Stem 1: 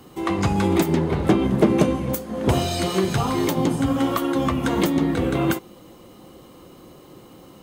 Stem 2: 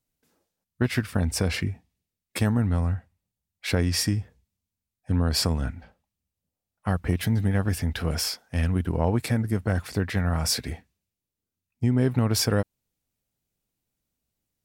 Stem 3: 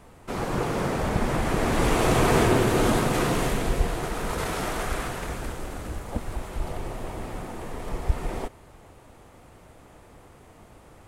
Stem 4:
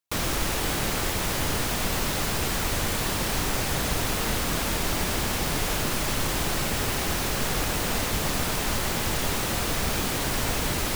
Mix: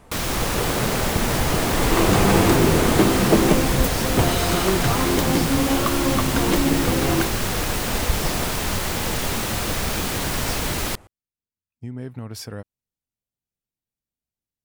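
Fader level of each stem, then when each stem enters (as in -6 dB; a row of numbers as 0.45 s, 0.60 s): -0.5 dB, -11.0 dB, +1.0 dB, +2.0 dB; 1.70 s, 0.00 s, 0.00 s, 0.00 s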